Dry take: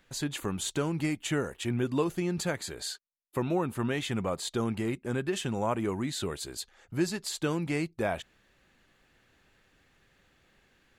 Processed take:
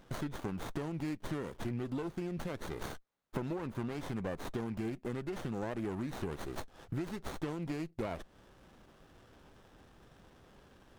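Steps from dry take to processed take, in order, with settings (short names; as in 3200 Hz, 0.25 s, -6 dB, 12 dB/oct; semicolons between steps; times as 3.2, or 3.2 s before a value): limiter -22 dBFS, peak gain reduction 5 dB; compressor 6:1, threshold -43 dBFS, peak gain reduction 15.5 dB; running maximum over 17 samples; gain +8 dB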